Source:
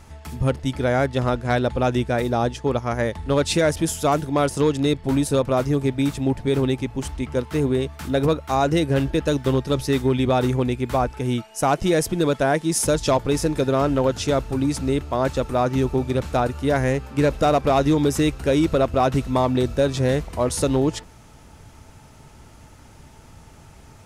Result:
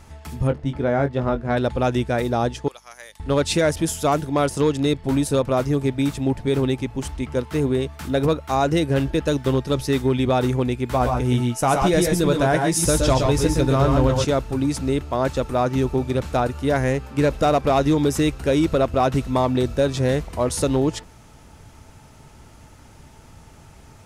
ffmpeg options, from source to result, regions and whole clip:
-filter_complex "[0:a]asettb=1/sr,asplit=3[a][b][c];[a]atrim=end=0.474[d];[b]atrim=start=0.47:end=1.57,asetpts=PTS-STARTPTS,afade=t=in:d=0.004:c=qsin,afade=t=out:st=1.096:d=0.004:c=qsin,lowpass=f=1.3k:p=1,asplit=2[e][f];[f]adelay=21,volume=-8dB[g];[e][g]amix=inputs=2:normalize=0,atrim=end_sample=48510[h];[c]atrim=start=1.566[i];[d][h]acrossfade=d=0.004:c1=hsin:c2=qsin[j];[j][i]acrossfade=d=0.004:c1=qsin:c2=hsin,asettb=1/sr,asplit=3[k][l][m];[k]atrim=end=2.684[n];[l]atrim=start=2.68:end=3.2,asetpts=PTS-STARTPTS,afade=t=in:d=0.004:c=qsin,afade=t=out:st=0.516:d=0.004:c=qsin,highpass=380,aderivative,aeval=exprs='val(0)+0.000891*(sin(2*PI*50*n/s)+sin(2*PI*2*50*n/s)/2+sin(2*PI*3*50*n/s)/3+sin(2*PI*4*50*n/s)/4+sin(2*PI*5*50*n/s)/5)':c=same[o];[m]atrim=start=3.196[p];[n][o]acrossfade=d=0.004:c1=hsin:c2=qsin[q];[q][p]acrossfade=d=0.004:c1=qsin:c2=hsin,asettb=1/sr,asplit=3[r][s][t];[r]atrim=end=10.884[u];[s]atrim=start=10.88:end=14.25,asetpts=PTS-STARTPTS,afade=t=in:d=0.004:c=qsin,afade=t=out:st=3.366:d=0.004:c=qsin,asubboost=boost=2:cutoff=220,asplit=2[v][w];[w]adelay=16,volume=-11.5dB[x];[v][x]amix=inputs=2:normalize=0,atrim=end_sample=148617,aecho=1:1:119|136:0.531|0.501,atrim=end_sample=148617[y];[t]atrim=start=14.246[z];[u][y]acrossfade=d=0.004:c1=hsin:c2=qsin[aa];[aa][z]acrossfade=d=0.004:c1=qsin:c2=hsin"

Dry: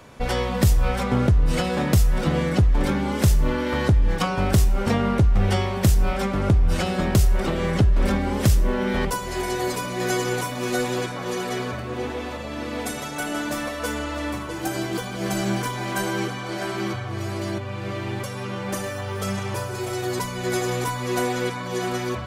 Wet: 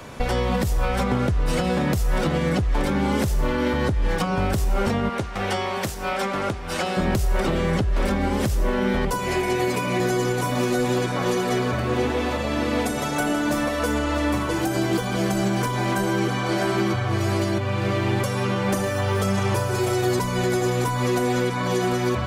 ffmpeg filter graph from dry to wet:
-filter_complex "[0:a]asettb=1/sr,asplit=3[a][b][c];[a]atrim=end=5.094[d];[b]atrim=start=5.09:end=6.97,asetpts=PTS-STARTPTS,afade=t=in:d=0.004:c=qsin,afade=t=out:st=1.876:d=0.004:c=qsin,highpass=f=880:p=1,highshelf=f=11k:g=-4.5,asoftclip=type=hard:threshold=-16dB[e];[c]atrim=start=6.966[f];[d][e]acrossfade=d=0.004:c1=hsin:c2=qsin[g];[g][f]acrossfade=d=0.004:c1=qsin:c2=hsin,asettb=1/sr,asplit=3[h][i][j];[h]atrim=end=9.194[k];[i]atrim=start=9.19:end=10,asetpts=PTS-STARTPTS,afade=t=in:d=0.004:c=qsin,afade=t=out:st=0.806:d=0.004:c=qsin,highpass=81,equalizer=f=2.4k:t=o:w=0.59:g=9[l];[j]atrim=start=9.996[m];[k][l]acrossfade=d=0.004:c1=hsin:c2=qsin[n];[n][m]acrossfade=d=0.004:c1=qsin:c2=hsin,acrossover=split=350|1300[o][p][q];[o]acompressor=threshold=-26dB:ratio=4[r];[p]acompressor=threshold=-31dB:ratio=4[s];[q]acompressor=threshold=-38dB:ratio=4[t];[r][s][t]amix=inputs=3:normalize=0,alimiter=limit=-20.5dB:level=0:latency=1:release=174,volume=7.5dB"

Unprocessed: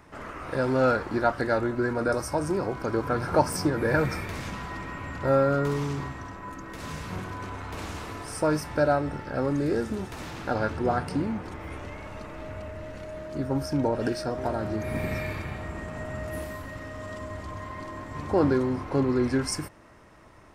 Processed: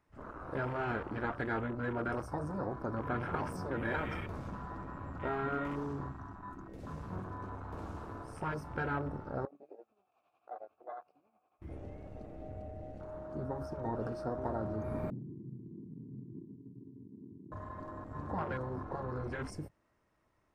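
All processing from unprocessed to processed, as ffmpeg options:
-filter_complex "[0:a]asettb=1/sr,asplit=3[a][b][c];[a]atrim=end=9.454[d];[b]atrim=start=9.45:end=11.62,asetpts=PTS-STARTPTS,afade=t=in:d=0.004:c=qsin,afade=t=out:st=2.166:d=0.004:c=qsin,tremolo=f=11:d=0.62,asplit=3[e][f][g];[e]bandpass=f=730:t=q:w=8,volume=0dB[h];[f]bandpass=f=1.09k:t=q:w=8,volume=-6dB[i];[g]bandpass=f=2.44k:t=q:w=8,volume=-9dB[j];[h][i][j]amix=inputs=3:normalize=0[k];[c]atrim=start=11.616[l];[d][k]acrossfade=d=0.004:c1=hsin:c2=qsin[m];[m][l]acrossfade=d=0.004:c1=qsin:c2=hsin,asettb=1/sr,asplit=3[n][o][p];[n]atrim=end=15.104[q];[o]atrim=start=15.1:end=17.52,asetpts=PTS-STARTPTS,afade=t=in:d=0.004:c=qsin,afade=t=out:st=2.416:d=0.004:c=qsin,asuperpass=centerf=200:order=12:qfactor=0.81,bandreject=f=50:t=h:w=6,bandreject=f=100:t=h:w=6,bandreject=f=150:t=h:w=6[r];[p]atrim=start=17.516[s];[q][r]acrossfade=d=0.004:c1=hsin:c2=qsin[t];[t][s]acrossfade=d=0.004:c1=qsin:c2=hsin,afwtdn=0.0178,afftfilt=real='re*lt(hypot(re,im),0.316)':imag='im*lt(hypot(re,im),0.316)':win_size=1024:overlap=0.75,volume=-6dB"

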